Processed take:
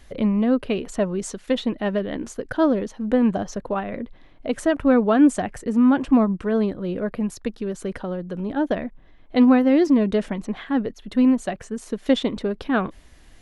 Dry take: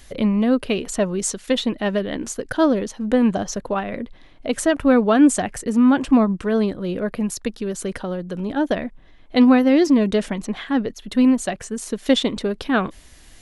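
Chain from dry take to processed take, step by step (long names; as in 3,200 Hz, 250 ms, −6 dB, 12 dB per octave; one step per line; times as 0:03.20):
high-shelf EQ 3,400 Hz −10.5 dB
level −1.5 dB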